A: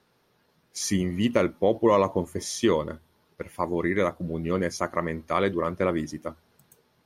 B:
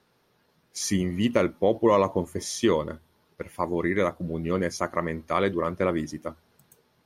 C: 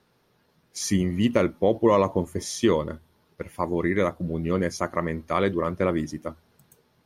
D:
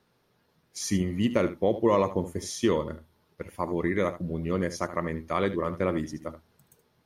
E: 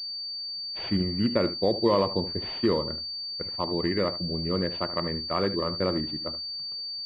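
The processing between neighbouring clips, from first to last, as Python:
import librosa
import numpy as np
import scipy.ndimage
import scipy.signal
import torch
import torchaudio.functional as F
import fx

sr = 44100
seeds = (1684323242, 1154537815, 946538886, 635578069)

y1 = x
y2 = fx.low_shelf(y1, sr, hz=250.0, db=4.0)
y3 = y2 + 10.0 ** (-13.0 / 20.0) * np.pad(y2, (int(75 * sr / 1000.0), 0))[:len(y2)]
y3 = y3 * librosa.db_to_amplitude(-3.5)
y4 = fx.pwm(y3, sr, carrier_hz=4600.0)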